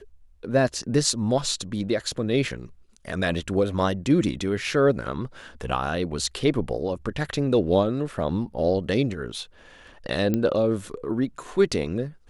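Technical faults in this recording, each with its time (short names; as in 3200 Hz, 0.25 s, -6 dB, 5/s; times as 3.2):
10.34 pop -12 dBFS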